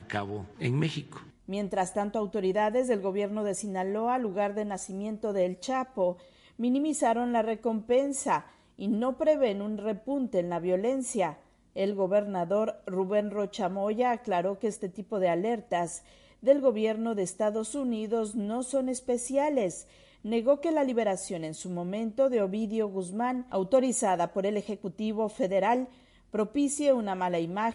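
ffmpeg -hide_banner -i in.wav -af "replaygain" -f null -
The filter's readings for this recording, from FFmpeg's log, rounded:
track_gain = +9.2 dB
track_peak = 0.213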